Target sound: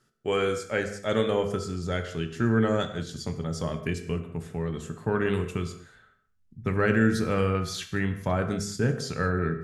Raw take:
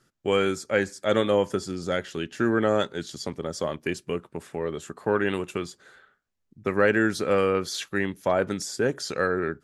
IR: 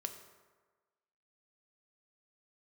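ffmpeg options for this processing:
-filter_complex "[0:a]asubboost=boost=6:cutoff=170[link_01];[1:a]atrim=start_sample=2205,afade=type=out:start_time=0.29:duration=0.01,atrim=end_sample=13230,asetrate=48510,aresample=44100[link_02];[link_01][link_02]afir=irnorm=-1:irlink=0"

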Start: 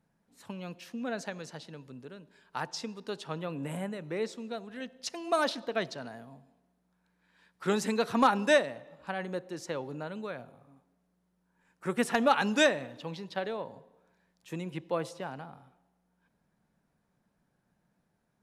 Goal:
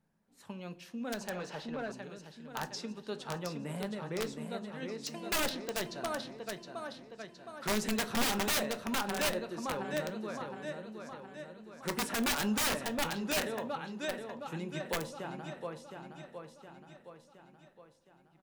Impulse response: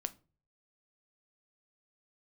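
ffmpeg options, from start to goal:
-filter_complex "[0:a]aecho=1:1:716|1432|2148|2864|3580|4296|5012:0.501|0.266|0.141|0.0746|0.0395|0.021|0.0111,aeval=exprs='(mod(12.6*val(0)+1,2)-1)/12.6':channel_layout=same[link_01];[1:a]atrim=start_sample=2205,asetrate=57330,aresample=44100[link_02];[link_01][link_02]afir=irnorm=-1:irlink=0,asettb=1/sr,asplit=3[link_03][link_04][link_05];[link_03]atrim=end=1.304[link_06];[link_04]atrim=start=1.3:end=1.92,asetpts=PTS-STARTPTS,afade=type=in:duration=0.004:curve=qsin,afade=type=out:start_time=0.616:duration=0.004:curve=qsin,asplit=2[link_07][link_08];[link_08]highpass=frequency=720:poles=1,volume=20dB,asoftclip=type=tanh:threshold=-27.5dB[link_09];[link_07][link_09]amix=inputs=2:normalize=0,lowpass=frequency=1400:poles=1,volume=-6dB[link_10];[link_05]atrim=start=1.916[link_11];[link_06][link_10]acrossfade=duration=0.004:curve1=hsin:curve2=qsin[link_12];[link_12][link_11]acrossfade=duration=0.004:curve1=qsin:curve2=hsin"

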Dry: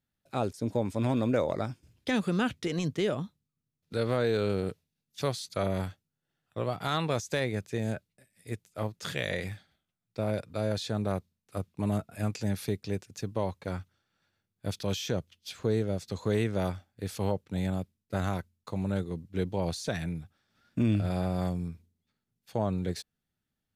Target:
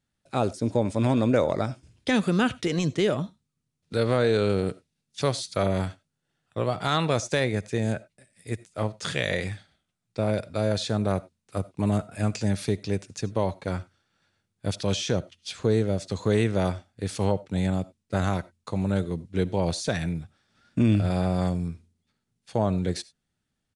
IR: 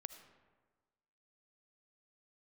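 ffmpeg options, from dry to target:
-filter_complex "[0:a]aresample=22050,aresample=44100,asplit=2[link_01][link_02];[1:a]atrim=start_sample=2205,afade=type=out:start_time=0.15:duration=0.01,atrim=end_sample=7056,highshelf=frequency=8800:gain=7.5[link_03];[link_02][link_03]afir=irnorm=-1:irlink=0,volume=3.5dB[link_04];[link_01][link_04]amix=inputs=2:normalize=0"

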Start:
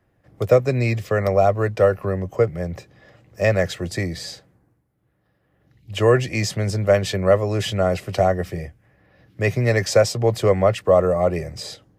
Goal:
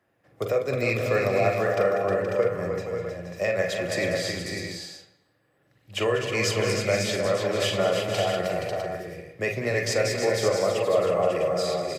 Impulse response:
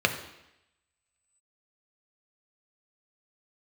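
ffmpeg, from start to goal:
-filter_complex "[0:a]highpass=frequency=380:poles=1,alimiter=limit=-14.5dB:level=0:latency=1:release=312,aecho=1:1:195|313|474|545|654:0.282|0.473|0.335|0.501|0.335,asplit=2[link_01][link_02];[1:a]atrim=start_sample=2205,adelay=42[link_03];[link_02][link_03]afir=irnorm=-1:irlink=0,volume=-17dB[link_04];[link_01][link_04]amix=inputs=2:normalize=0,volume=-1.5dB"

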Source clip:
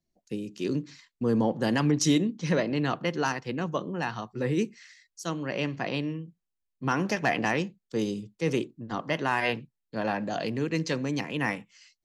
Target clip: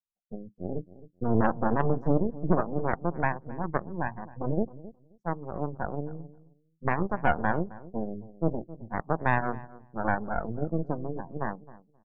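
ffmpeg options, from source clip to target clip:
ffmpeg -i in.wav -filter_complex "[0:a]acontrast=63,firequalizer=gain_entry='entry(160,0);entry(370,-10);entry(790,3);entry(2000,-29)':delay=0.05:min_phase=1,aeval=exprs='0.447*(cos(1*acos(clip(val(0)/0.447,-1,1)))-cos(1*PI/2))+0.141*(cos(6*acos(clip(val(0)/0.447,-1,1)))-cos(6*PI/2))+0.0355*(cos(7*acos(clip(val(0)/0.447,-1,1)))-cos(7*PI/2))+0.0224*(cos(8*acos(clip(val(0)/0.447,-1,1)))-cos(8*PI/2))':channel_layout=same,afftdn=noise_reduction=23:noise_floor=-33,asplit=2[link_01][link_02];[link_02]adelay=265,lowpass=frequency=870:poles=1,volume=-16.5dB,asplit=2[link_03][link_04];[link_04]adelay=265,lowpass=frequency=870:poles=1,volume=0.18[link_05];[link_03][link_05]amix=inputs=2:normalize=0[link_06];[link_01][link_06]amix=inputs=2:normalize=0,volume=-3.5dB" out.wav

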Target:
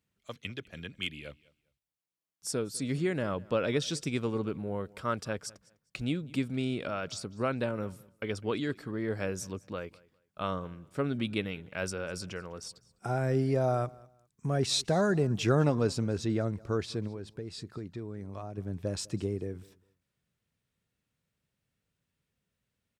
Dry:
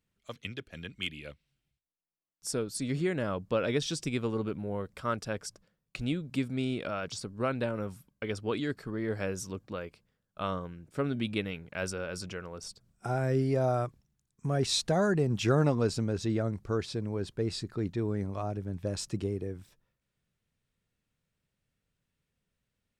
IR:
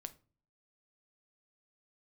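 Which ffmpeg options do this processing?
-filter_complex "[0:a]asettb=1/sr,asplit=3[link_01][link_02][link_03];[link_01]atrim=end=17.074[link_04];[link_02]atrim=start=17.07:end=18.58,asetpts=PTS-STARTPTS,afade=type=in:duration=0.004:curve=qsin,afade=type=out:start_time=1.506:duration=0.004:curve=qsin,acompressor=threshold=-37dB:ratio=6[link_05];[link_03]atrim=start=18.576[link_06];[link_04][link_05]acrossfade=duration=0.004:curve1=hsin:curve2=qsin[link_07];[link_07][link_06]acrossfade=duration=0.004:curve1=qsin:curve2=hsin,highpass=51,aecho=1:1:202|404:0.0668|0.0154"

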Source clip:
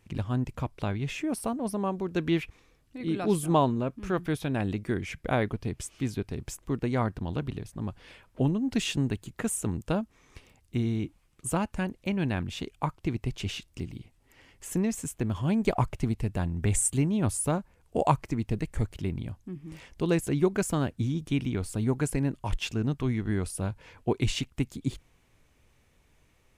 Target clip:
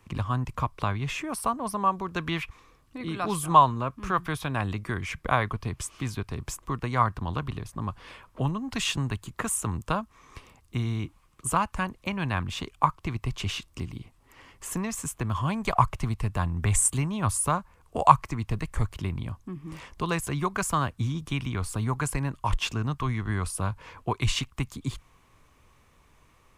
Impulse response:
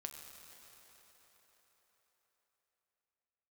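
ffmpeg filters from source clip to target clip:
-filter_complex "[0:a]equalizer=frequency=1100:width=3.3:gain=12,acrossover=split=150|660|3700[link_01][link_02][link_03][link_04];[link_02]acompressor=threshold=-40dB:ratio=6[link_05];[link_01][link_05][link_03][link_04]amix=inputs=4:normalize=0,volume=3.5dB"

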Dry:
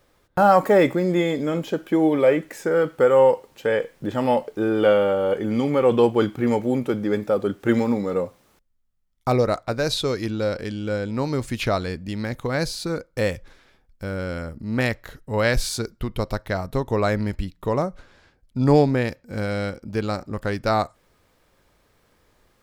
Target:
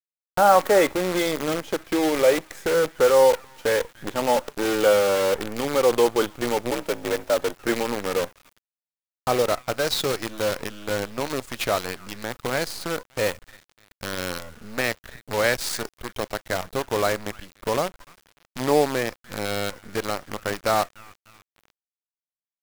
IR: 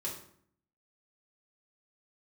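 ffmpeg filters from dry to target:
-filter_complex "[0:a]acrossover=split=330|1400|1800[link_01][link_02][link_03][link_04];[link_01]acompressor=threshold=-35dB:ratio=16[link_05];[link_03]aecho=1:1:294|588|882|1176|1470:0.501|0.2|0.0802|0.0321|0.0128[link_06];[link_05][link_02][link_06][link_04]amix=inputs=4:normalize=0,asplit=3[link_07][link_08][link_09];[link_07]afade=type=out:start_time=6.7:duration=0.02[link_10];[link_08]afreqshift=57,afade=type=in:start_time=6.7:duration=0.02,afade=type=out:start_time=7.55:duration=0.02[link_11];[link_09]afade=type=in:start_time=7.55:duration=0.02[link_12];[link_10][link_11][link_12]amix=inputs=3:normalize=0,acrusher=bits=5:dc=4:mix=0:aa=0.000001"

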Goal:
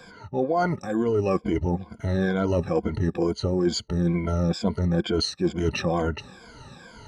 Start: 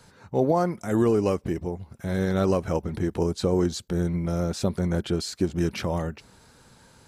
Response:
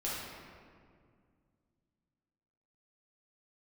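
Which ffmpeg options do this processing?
-af "afftfilt=real='re*pow(10,20/40*sin(2*PI*(1.8*log(max(b,1)*sr/1024/100)/log(2)-(-2.2)*(pts-256)/sr)))':imag='im*pow(10,20/40*sin(2*PI*(1.8*log(max(b,1)*sr/1024/100)/log(2)-(-2.2)*(pts-256)/sr)))':win_size=1024:overlap=0.75,lowpass=4900,areverse,acompressor=threshold=-25dB:ratio=10,areverse,volume=5dB"

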